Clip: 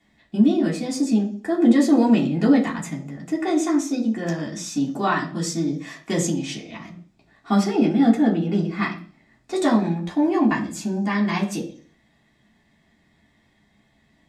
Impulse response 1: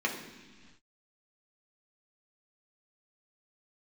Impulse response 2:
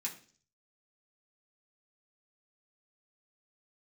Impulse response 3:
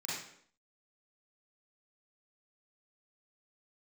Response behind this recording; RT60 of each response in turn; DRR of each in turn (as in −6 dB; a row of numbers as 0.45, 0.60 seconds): 2; non-exponential decay, 0.45 s, 0.65 s; −1.0, −4.0, −8.0 decibels